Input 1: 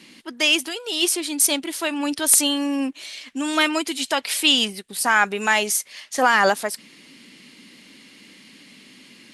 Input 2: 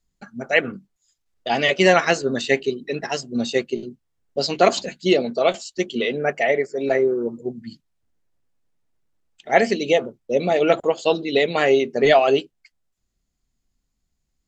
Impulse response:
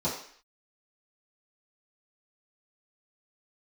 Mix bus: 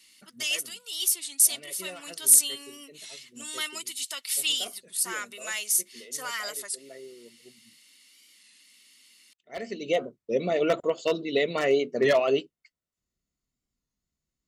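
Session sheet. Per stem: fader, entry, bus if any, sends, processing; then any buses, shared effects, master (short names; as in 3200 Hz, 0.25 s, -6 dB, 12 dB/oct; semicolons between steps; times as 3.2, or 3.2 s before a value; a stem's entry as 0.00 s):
-1.5 dB, 0.00 s, no send, pre-emphasis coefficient 0.97
-6.0 dB, 0.00 s, no send, wavefolder -7 dBFS; auto duck -20 dB, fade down 0.65 s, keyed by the first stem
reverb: off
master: notch comb 810 Hz; record warp 33 1/3 rpm, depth 100 cents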